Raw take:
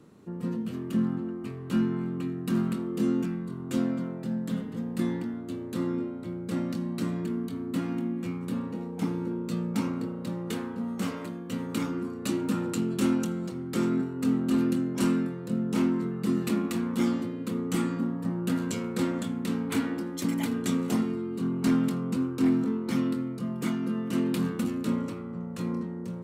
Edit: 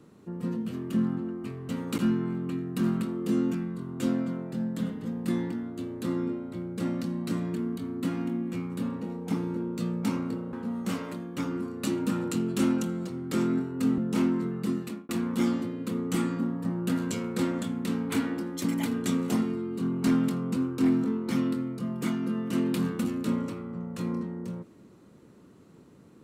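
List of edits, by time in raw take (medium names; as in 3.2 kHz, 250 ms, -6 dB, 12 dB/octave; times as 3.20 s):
10.24–10.66 s: delete
11.51–11.80 s: move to 1.69 s
14.40–15.58 s: delete
16.18–16.69 s: fade out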